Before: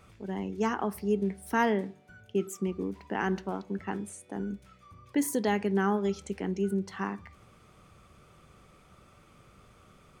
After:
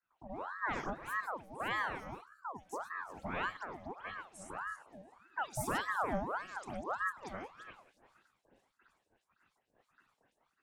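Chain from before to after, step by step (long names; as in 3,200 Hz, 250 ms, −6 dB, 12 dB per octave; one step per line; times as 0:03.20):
feedback delay that plays each chunk backwards 172 ms, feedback 45%, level −10 dB
gain on a spectral selection 0:02.11–0:02.43, 350–5,500 Hz −27 dB
wrong playback speed 25 fps video run at 24 fps
rotating-speaker cabinet horn 0.85 Hz, later 6.3 Hz, at 0:06.42
noise gate −56 dBFS, range −22 dB
all-pass dispersion highs, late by 119 ms, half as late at 2,600 Hz
ring modulator whose carrier an LFO sweeps 940 Hz, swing 60%, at 1.7 Hz
level −5 dB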